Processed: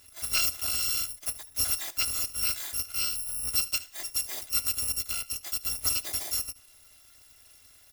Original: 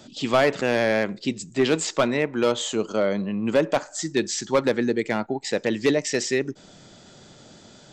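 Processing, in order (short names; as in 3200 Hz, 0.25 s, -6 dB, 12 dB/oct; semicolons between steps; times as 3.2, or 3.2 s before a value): FFT order left unsorted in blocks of 256 samples; echo 74 ms -19.5 dB; gain -7.5 dB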